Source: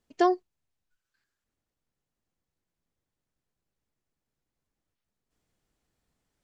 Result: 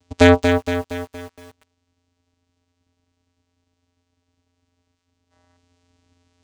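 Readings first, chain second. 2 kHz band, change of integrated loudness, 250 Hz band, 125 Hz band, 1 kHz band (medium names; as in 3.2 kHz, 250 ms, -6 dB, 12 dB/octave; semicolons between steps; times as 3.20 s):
+20.0 dB, +9.5 dB, +13.5 dB, +49.5 dB, +6.0 dB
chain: vocoder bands 4, square 87.8 Hz; treble shelf 2.6 kHz +11.5 dB; in parallel at -11.5 dB: sine folder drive 12 dB, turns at -9.5 dBFS; on the sum: time-frequency box 5.31–5.57 s, 490–2100 Hz +8 dB; bit-crushed delay 233 ms, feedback 55%, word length 8-bit, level -6 dB; trim +8.5 dB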